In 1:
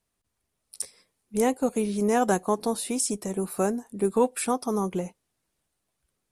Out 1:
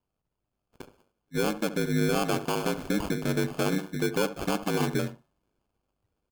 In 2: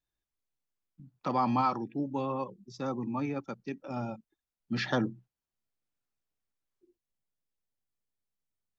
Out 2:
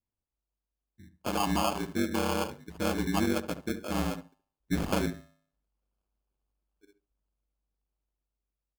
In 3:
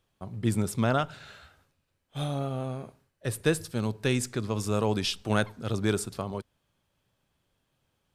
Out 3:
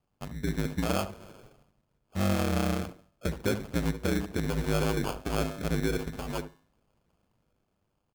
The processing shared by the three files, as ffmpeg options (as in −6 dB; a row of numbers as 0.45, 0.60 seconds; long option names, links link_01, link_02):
-filter_complex "[0:a]aemphasis=mode=reproduction:type=75kf,bandreject=frequency=209.4:width_type=h:width=4,bandreject=frequency=418.8:width_type=h:width=4,bandreject=frequency=628.2:width_type=h:width=4,bandreject=frequency=837.6:width_type=h:width=4,bandreject=frequency=1047:width_type=h:width=4,bandreject=frequency=1256.4:width_type=h:width=4,bandreject=frequency=1465.8:width_type=h:width=4,bandreject=frequency=1675.2:width_type=h:width=4,bandreject=frequency=1884.6:width_type=h:width=4,bandreject=frequency=2094:width_type=h:width=4,bandreject=frequency=2303.4:width_type=h:width=4,bandreject=frequency=2512.8:width_type=h:width=4,bandreject=frequency=2722.2:width_type=h:width=4,bandreject=frequency=2931.6:width_type=h:width=4,bandreject=frequency=3141:width_type=h:width=4,dynaudnorm=framelen=700:gausssize=5:maxgain=7dB,acrusher=samples=23:mix=1:aa=0.000001,acontrast=80,alimiter=limit=-11.5dB:level=0:latency=1:release=208,aeval=exprs='val(0)*sin(2*PI*50*n/s)':channel_layout=same,asplit=2[link_01][link_02];[link_02]adelay=71,lowpass=frequency=1200:poles=1,volume=-11dB,asplit=2[link_03][link_04];[link_04]adelay=71,lowpass=frequency=1200:poles=1,volume=0.15[link_05];[link_01][link_03][link_05]amix=inputs=3:normalize=0,volume=-5.5dB"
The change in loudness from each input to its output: −1.5, +2.0, −1.5 LU